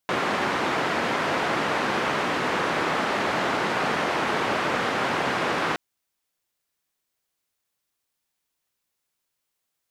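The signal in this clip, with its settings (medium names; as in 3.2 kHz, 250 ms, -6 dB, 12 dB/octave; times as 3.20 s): noise band 170–1500 Hz, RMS -25 dBFS 5.67 s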